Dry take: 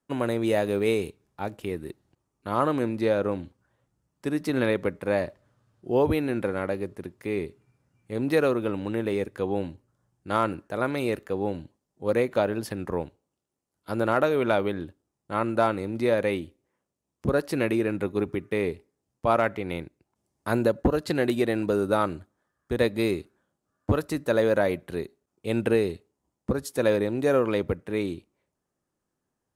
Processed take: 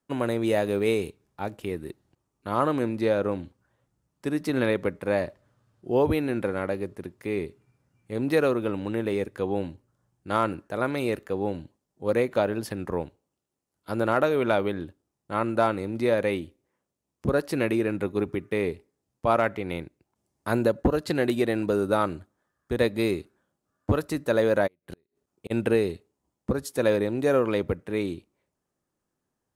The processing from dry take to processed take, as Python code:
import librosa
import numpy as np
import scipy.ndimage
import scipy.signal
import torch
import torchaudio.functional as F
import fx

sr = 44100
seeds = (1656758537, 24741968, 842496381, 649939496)

y = fx.gate_flip(x, sr, shuts_db=-24.0, range_db=-39, at=(24.66, 25.5), fade=0.02)